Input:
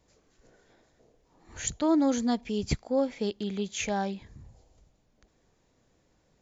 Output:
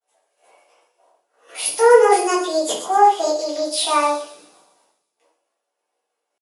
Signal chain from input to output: expander -55 dBFS; HPF 300 Hz 24 dB/oct; pitch shift +7 st; thin delay 0.124 s, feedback 52%, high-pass 5000 Hz, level -8 dB; shoebox room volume 65 m³, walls mixed, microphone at 1.7 m; gain +5.5 dB

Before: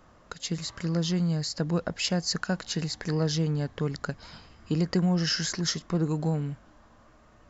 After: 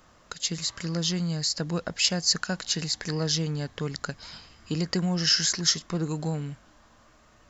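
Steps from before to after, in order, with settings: high shelf 2000 Hz +10.5 dB; gain -2.5 dB

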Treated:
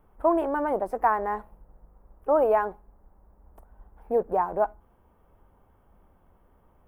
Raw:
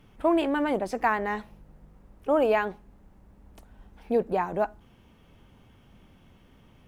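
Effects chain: graphic EQ 125/250/1000/2000/4000/8000 Hz -11/-8/+3/-9/-11/-9 dB; in parallel at -7 dB: backlash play -44.5 dBFS; on the sum: band shelf 4100 Hz -9.5 dB

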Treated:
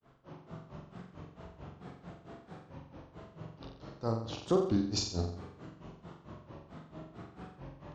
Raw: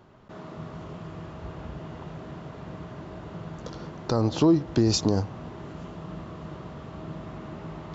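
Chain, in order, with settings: grains 0.174 s, grains 4.5/s, pitch spread up and down by 3 st; flutter echo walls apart 7.6 m, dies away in 0.6 s; gain -7 dB

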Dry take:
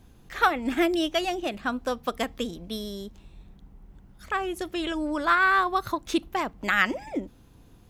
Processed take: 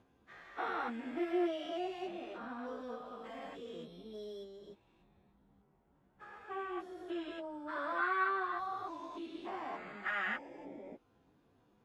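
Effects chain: stepped spectrum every 0.2 s; band-pass 780 Hz, Q 0.51; plain phase-vocoder stretch 1.5×; gain -4 dB

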